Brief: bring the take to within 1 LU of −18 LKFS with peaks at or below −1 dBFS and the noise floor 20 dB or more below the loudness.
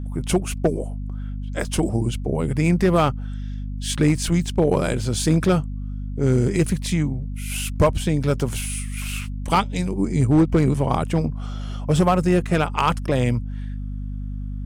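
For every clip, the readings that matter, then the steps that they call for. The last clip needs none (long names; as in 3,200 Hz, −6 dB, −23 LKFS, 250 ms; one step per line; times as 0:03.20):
share of clipped samples 1.1%; peaks flattened at −10.0 dBFS; mains hum 50 Hz; hum harmonics up to 250 Hz; level of the hum −26 dBFS; integrated loudness −22.5 LKFS; sample peak −10.0 dBFS; target loudness −18.0 LKFS
→ clipped peaks rebuilt −10 dBFS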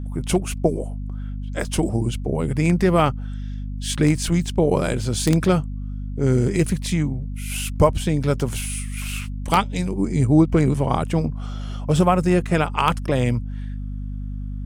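share of clipped samples 0.0%; mains hum 50 Hz; hum harmonics up to 250 Hz; level of the hum −26 dBFS
→ mains-hum notches 50/100/150/200/250 Hz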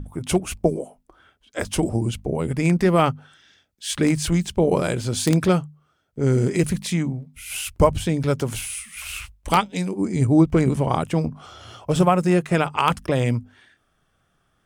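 mains hum none found; integrated loudness −22.0 LKFS; sample peak −1.5 dBFS; target loudness −18.0 LKFS
→ level +4 dB
brickwall limiter −1 dBFS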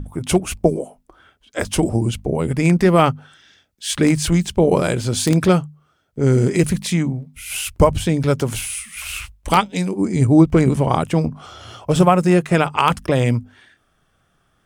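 integrated loudness −18.0 LKFS; sample peak −1.0 dBFS; background noise floor −64 dBFS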